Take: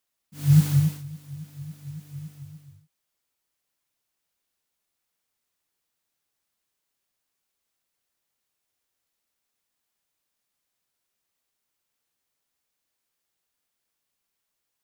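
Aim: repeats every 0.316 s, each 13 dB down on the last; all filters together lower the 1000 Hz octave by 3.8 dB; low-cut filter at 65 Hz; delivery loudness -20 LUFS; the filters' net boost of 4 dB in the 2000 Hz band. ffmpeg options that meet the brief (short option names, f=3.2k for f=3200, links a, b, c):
-af "highpass=65,equalizer=f=1k:t=o:g=-7.5,equalizer=f=2k:t=o:g=7,aecho=1:1:316|632|948:0.224|0.0493|0.0108,volume=3dB"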